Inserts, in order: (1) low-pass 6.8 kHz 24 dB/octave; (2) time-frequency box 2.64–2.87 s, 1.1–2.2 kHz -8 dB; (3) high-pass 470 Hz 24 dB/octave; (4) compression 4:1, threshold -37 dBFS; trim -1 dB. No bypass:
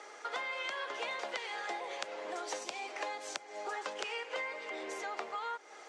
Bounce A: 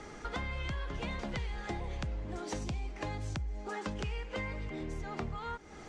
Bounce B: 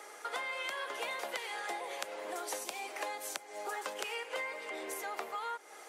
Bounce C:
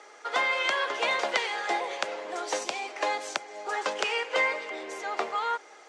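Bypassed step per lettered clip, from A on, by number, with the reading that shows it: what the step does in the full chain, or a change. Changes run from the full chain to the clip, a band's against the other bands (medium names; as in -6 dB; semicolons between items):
3, 250 Hz band +16.0 dB; 1, 8 kHz band +4.0 dB; 4, mean gain reduction 7.5 dB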